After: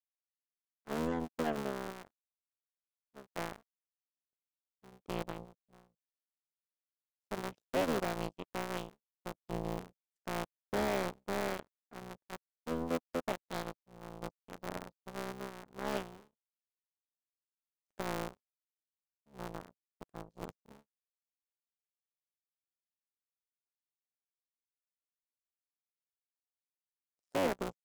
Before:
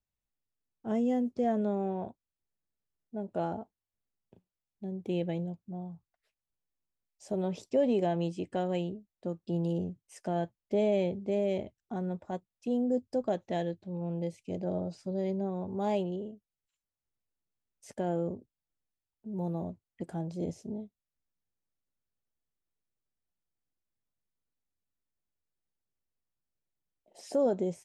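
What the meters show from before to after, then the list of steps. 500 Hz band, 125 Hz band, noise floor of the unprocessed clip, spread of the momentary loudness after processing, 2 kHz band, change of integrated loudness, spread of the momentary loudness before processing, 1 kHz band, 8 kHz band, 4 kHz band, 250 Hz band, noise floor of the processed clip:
−7.5 dB, −9.5 dB, below −85 dBFS, 17 LU, +6.5 dB, −6.0 dB, 13 LU, −2.0 dB, can't be measured, +2.5 dB, −9.0 dB, below −85 dBFS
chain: sub-harmonics by changed cycles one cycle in 3, muted
power curve on the samples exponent 3
soft clipping −33.5 dBFS, distortion −7 dB
level +10.5 dB

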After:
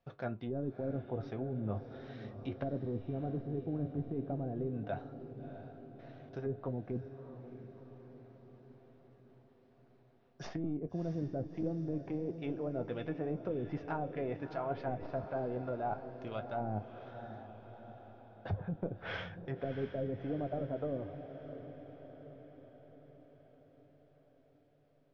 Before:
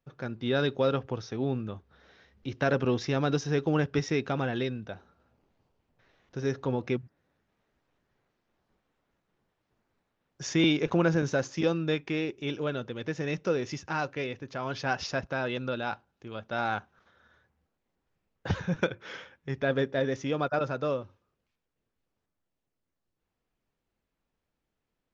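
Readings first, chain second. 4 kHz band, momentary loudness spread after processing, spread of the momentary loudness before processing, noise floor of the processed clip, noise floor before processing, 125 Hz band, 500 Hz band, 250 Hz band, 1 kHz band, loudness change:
−19.5 dB, 16 LU, 14 LU, −66 dBFS, −84 dBFS, −6.5 dB, −8.5 dB, −7.5 dB, −8.0 dB, −9.5 dB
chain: stylus tracing distortion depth 0.064 ms
treble cut that deepens with the level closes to 310 Hz, closed at −25.5 dBFS
low-pass filter 5,200 Hz 24 dB per octave
parametric band 680 Hz +12.5 dB 0.34 octaves
reversed playback
downward compressor, threshold −35 dBFS, peak gain reduction 12.5 dB
reversed playback
flanger 0.6 Hz, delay 9.4 ms, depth 1.6 ms, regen +62%
on a send: feedback delay with all-pass diffusion 658 ms, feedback 58%, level −10.5 dB
on the sum: level +5.5 dB

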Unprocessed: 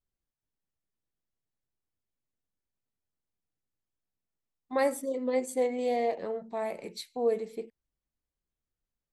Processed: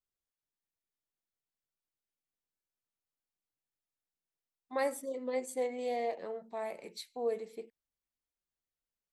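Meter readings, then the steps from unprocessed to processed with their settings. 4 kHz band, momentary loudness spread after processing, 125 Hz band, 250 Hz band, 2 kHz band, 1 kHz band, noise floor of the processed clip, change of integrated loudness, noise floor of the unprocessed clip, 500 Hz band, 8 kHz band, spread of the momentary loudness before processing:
−4.0 dB, 11 LU, can't be measured, −8.5 dB, −4.0 dB, −5.0 dB, below −85 dBFS, −6.0 dB, below −85 dBFS, −6.0 dB, −4.0 dB, 11 LU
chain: low-shelf EQ 260 Hz −9 dB
level −4 dB

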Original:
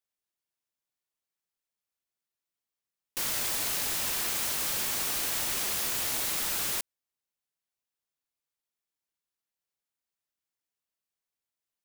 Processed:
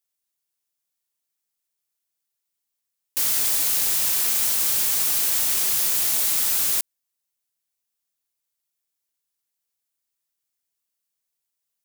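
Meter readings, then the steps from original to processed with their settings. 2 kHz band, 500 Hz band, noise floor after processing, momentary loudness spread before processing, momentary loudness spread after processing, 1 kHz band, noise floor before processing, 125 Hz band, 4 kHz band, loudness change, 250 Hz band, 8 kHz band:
+2.0 dB, 0.0 dB, −81 dBFS, 3 LU, 3 LU, +0.5 dB, below −85 dBFS, can't be measured, +5.0 dB, +9.5 dB, 0.0 dB, +8.5 dB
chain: high-shelf EQ 4,400 Hz +11 dB

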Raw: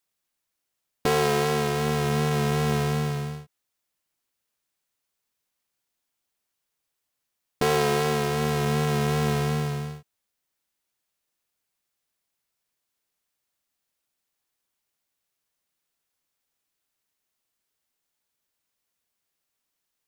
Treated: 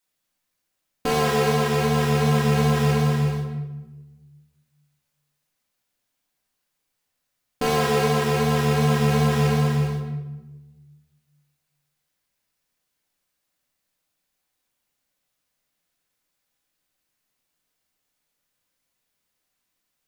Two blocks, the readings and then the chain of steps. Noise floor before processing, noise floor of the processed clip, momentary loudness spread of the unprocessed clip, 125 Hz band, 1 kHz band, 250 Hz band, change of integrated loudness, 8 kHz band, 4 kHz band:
−82 dBFS, −78 dBFS, 8 LU, +5.5 dB, +3.0 dB, +5.0 dB, +3.5 dB, +1.5 dB, +2.5 dB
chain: in parallel at +0.5 dB: brickwall limiter −16.5 dBFS, peak gain reduction 9 dB
on the sum: rectangular room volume 630 cubic metres, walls mixed, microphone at 2 metres
level −6.5 dB

